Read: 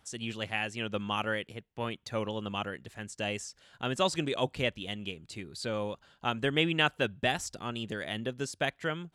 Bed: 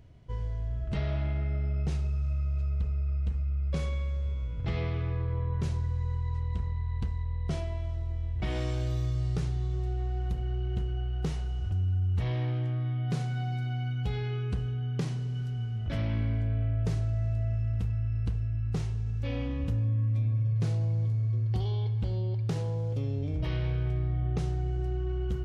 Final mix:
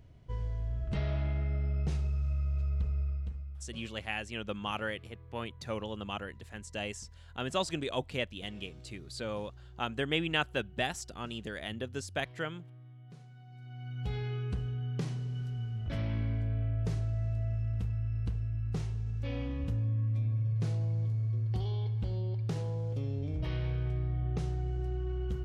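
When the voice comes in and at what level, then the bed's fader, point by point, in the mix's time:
3.55 s, -3.5 dB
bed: 3.02 s -2 dB
3.89 s -21.5 dB
13.45 s -21.5 dB
14.10 s -3.5 dB

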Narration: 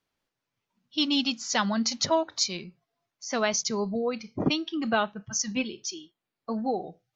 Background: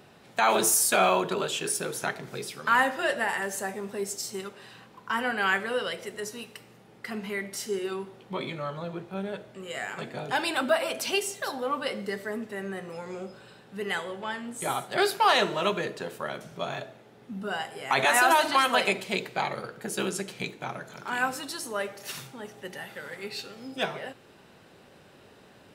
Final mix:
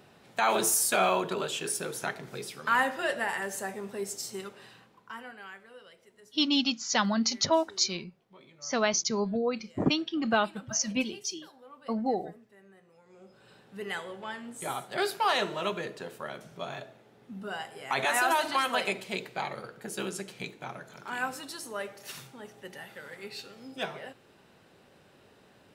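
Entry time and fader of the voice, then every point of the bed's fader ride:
5.40 s, -0.5 dB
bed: 4.64 s -3 dB
5.54 s -22 dB
13.04 s -22 dB
13.53 s -5 dB

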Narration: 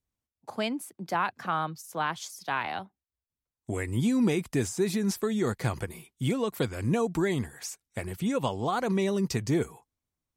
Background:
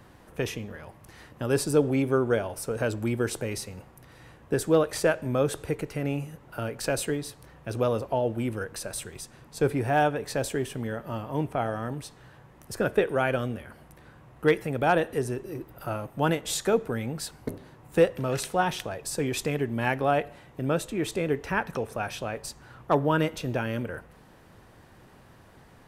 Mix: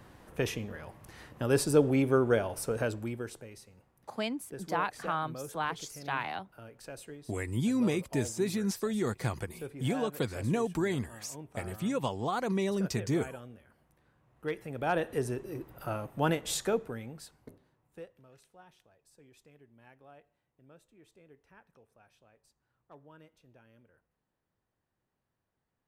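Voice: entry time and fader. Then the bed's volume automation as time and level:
3.60 s, -3.5 dB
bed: 2.73 s -1.5 dB
3.52 s -17.5 dB
14.18 s -17.5 dB
15.18 s -3.5 dB
16.56 s -3.5 dB
18.37 s -31.5 dB

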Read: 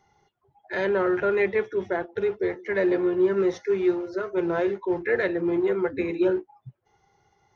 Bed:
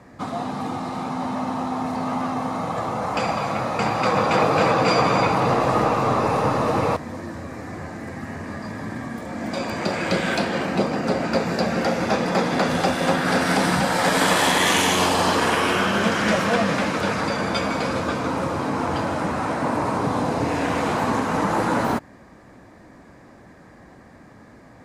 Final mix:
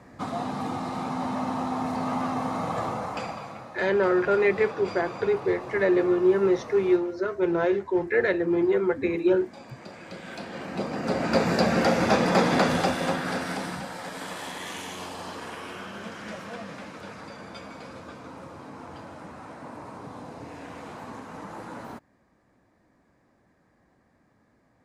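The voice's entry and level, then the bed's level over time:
3.05 s, +1.0 dB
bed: 2.85 s -3 dB
3.72 s -19 dB
10.15 s -19 dB
11.42 s 0 dB
12.54 s 0 dB
14.09 s -18 dB

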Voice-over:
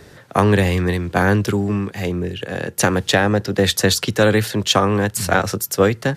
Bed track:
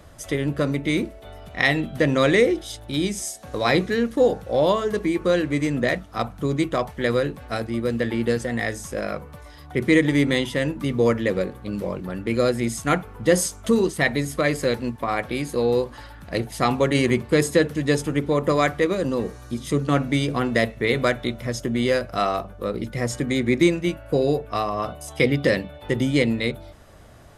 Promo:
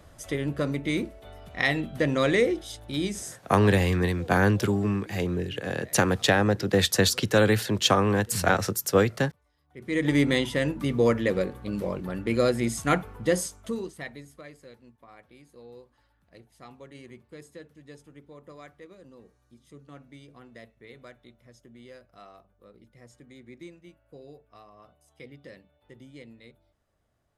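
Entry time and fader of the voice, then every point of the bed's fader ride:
3.15 s, -5.5 dB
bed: 3.15 s -5 dB
3.90 s -28 dB
9.66 s -28 dB
10.09 s -2.5 dB
13.09 s -2.5 dB
14.62 s -27 dB

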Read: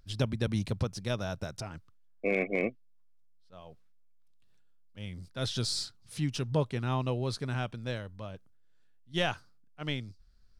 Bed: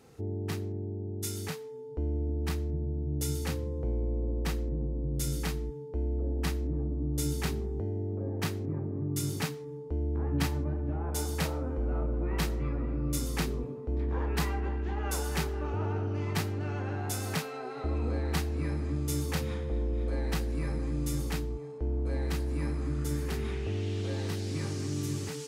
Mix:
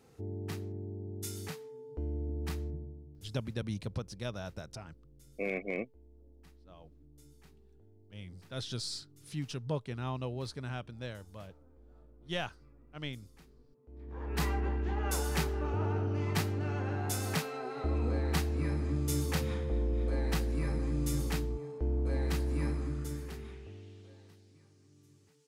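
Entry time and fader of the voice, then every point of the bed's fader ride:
3.15 s, -6.0 dB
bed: 2.67 s -5 dB
3.33 s -28.5 dB
13.72 s -28.5 dB
14.45 s -0.5 dB
22.68 s -0.5 dB
24.65 s -29.5 dB

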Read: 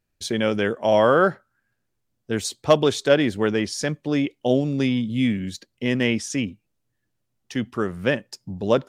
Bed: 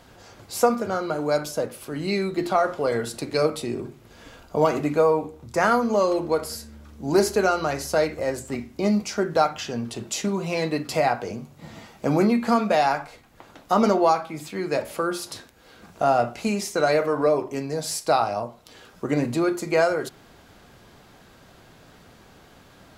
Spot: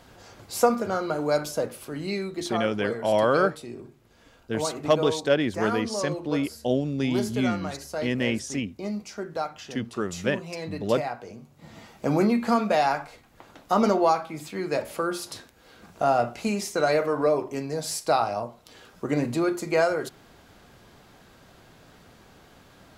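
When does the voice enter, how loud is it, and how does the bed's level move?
2.20 s, -4.5 dB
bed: 1.73 s -1 dB
2.69 s -10 dB
11.35 s -10 dB
11.91 s -2 dB

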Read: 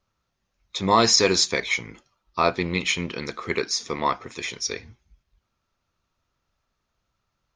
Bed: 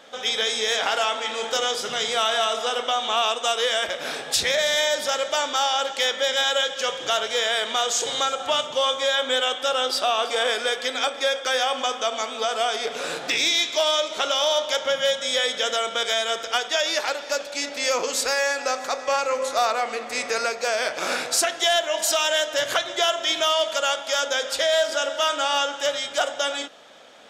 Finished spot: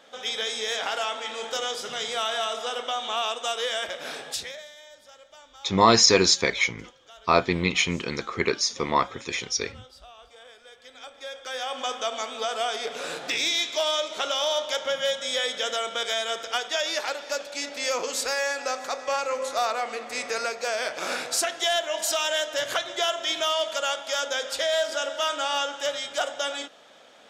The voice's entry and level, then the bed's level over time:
4.90 s, +1.0 dB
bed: 4.27 s -5.5 dB
4.75 s -26.5 dB
10.63 s -26.5 dB
11.91 s -4 dB

